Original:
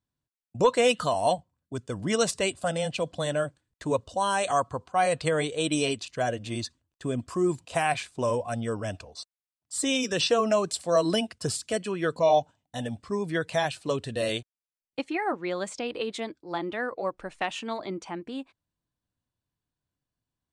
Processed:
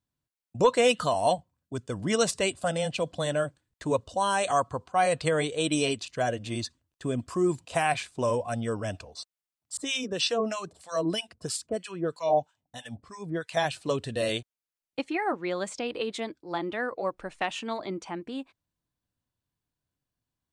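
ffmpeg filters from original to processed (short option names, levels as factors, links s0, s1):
-filter_complex "[0:a]asettb=1/sr,asplit=3[s0][s1][s2];[s0]atrim=end=9.774[s3];[s1]atrim=start=9.77:end=13.57,asetpts=PTS-STARTPTS,afade=t=in:d=0.004:c=qsin,afade=t=out:st=3.796:d=0.004:c=qsin,acrossover=split=1000[s4][s5];[s4]aeval=exprs='val(0)*(1-1/2+1/2*cos(2*PI*3.1*n/s))':c=same[s6];[s5]aeval=exprs='val(0)*(1-1/2-1/2*cos(2*PI*3.1*n/s))':c=same[s7];[s6][s7]amix=inputs=2:normalize=0[s8];[s2]atrim=start=13.566[s9];[s3][s8]acrossfade=d=0.004:c1=hsin:c2=qsin[s10];[s10][s9]acrossfade=d=0.004:c1=qsin:c2=hsin"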